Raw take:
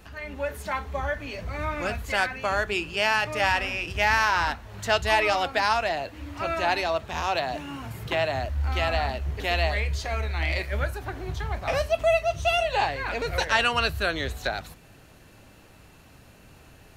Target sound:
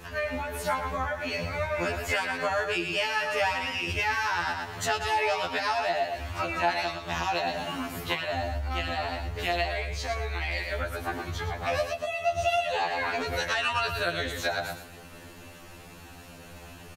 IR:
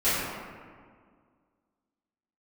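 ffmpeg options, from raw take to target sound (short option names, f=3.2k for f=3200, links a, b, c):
-af "aecho=1:1:114|228|342:0.376|0.0827|0.0182,acompressor=threshold=-31dB:ratio=6,equalizer=f=73:t=o:w=2.8:g=-3.5,afftfilt=real='re*2*eq(mod(b,4),0)':imag='im*2*eq(mod(b,4),0)':win_size=2048:overlap=0.75,volume=8.5dB"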